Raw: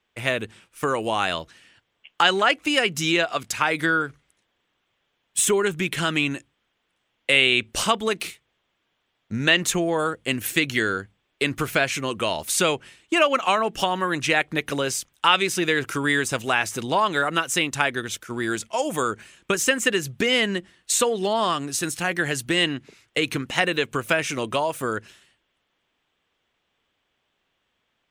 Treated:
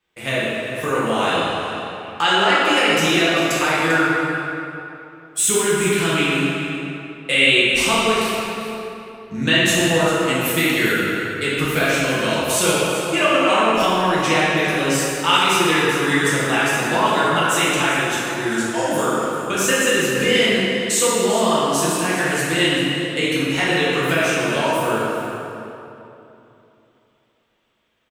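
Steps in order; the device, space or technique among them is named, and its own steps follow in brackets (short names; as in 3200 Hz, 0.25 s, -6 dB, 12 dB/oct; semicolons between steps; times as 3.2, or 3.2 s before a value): high shelf 7000 Hz +4.5 dB; cave (echo 0.395 s -12 dB; reverb RT60 2.9 s, pre-delay 3 ms, DRR -9 dB); gain -5 dB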